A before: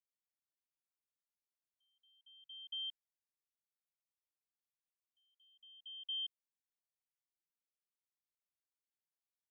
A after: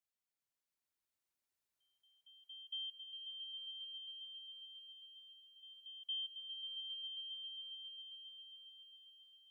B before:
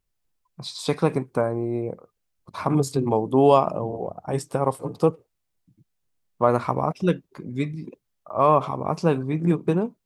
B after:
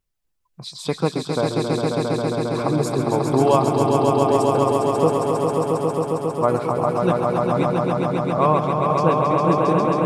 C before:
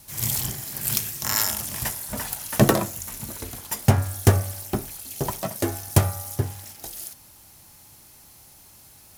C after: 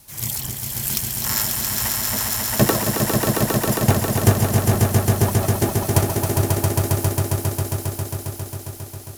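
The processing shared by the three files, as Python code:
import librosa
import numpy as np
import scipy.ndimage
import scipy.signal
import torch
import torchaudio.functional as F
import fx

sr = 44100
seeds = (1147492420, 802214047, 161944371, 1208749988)

y = fx.dereverb_blind(x, sr, rt60_s=0.52)
y = fx.echo_swell(y, sr, ms=135, loudest=5, wet_db=-4.5)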